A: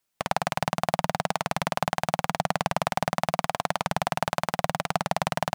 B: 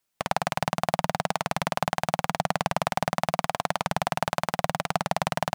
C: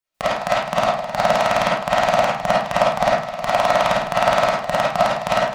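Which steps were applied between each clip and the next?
no processing that can be heard
gate pattern ".x.x.x..xxxx.xxx" 106 BPM −12 dB; convolution reverb RT60 0.35 s, pre-delay 10 ms, DRR −10 dB; level +1 dB

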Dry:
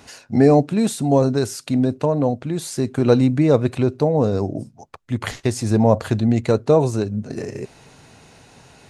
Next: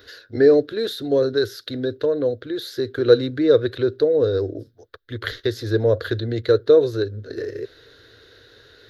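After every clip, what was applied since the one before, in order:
drawn EQ curve 110 Hz 0 dB, 180 Hz −22 dB, 320 Hz +3 dB, 480 Hz +8 dB, 830 Hz −17 dB, 1,600 Hz +11 dB, 2,500 Hz −8 dB, 3,700 Hz +12 dB, 8,700 Hz −21 dB, 13,000 Hz +9 dB
level −4 dB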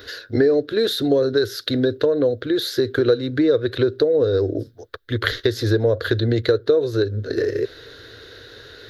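downward compressor 5 to 1, threshold −23 dBFS, peak gain reduction 14.5 dB
level +8 dB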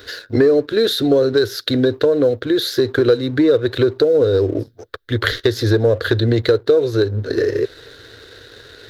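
leveller curve on the samples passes 1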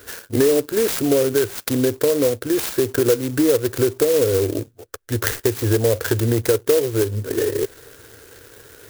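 converter with an unsteady clock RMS 0.085 ms
level −3 dB

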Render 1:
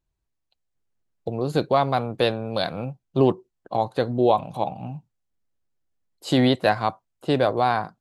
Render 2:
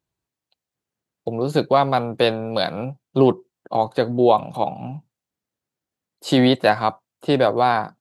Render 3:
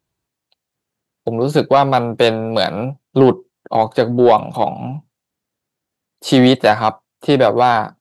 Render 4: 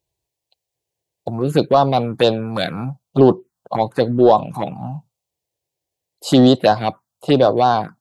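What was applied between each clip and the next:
high-pass filter 120 Hz 12 dB per octave; level +3.5 dB
soft clipping −6.5 dBFS, distortion −20 dB; level +6 dB
phaser swept by the level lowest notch 230 Hz, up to 2,200 Hz, full sweep at −7.5 dBFS

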